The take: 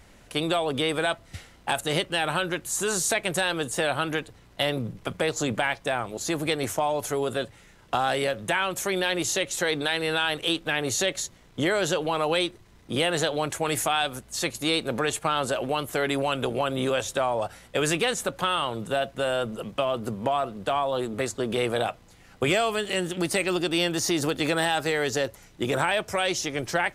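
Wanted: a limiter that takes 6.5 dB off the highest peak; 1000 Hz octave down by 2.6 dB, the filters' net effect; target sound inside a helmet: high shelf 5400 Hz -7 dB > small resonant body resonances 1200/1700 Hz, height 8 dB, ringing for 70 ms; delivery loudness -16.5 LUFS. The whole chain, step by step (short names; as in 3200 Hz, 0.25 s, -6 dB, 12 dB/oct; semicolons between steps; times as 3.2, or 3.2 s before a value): bell 1000 Hz -3.5 dB; limiter -18.5 dBFS; high shelf 5400 Hz -7 dB; small resonant body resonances 1200/1700 Hz, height 8 dB, ringing for 70 ms; gain +14 dB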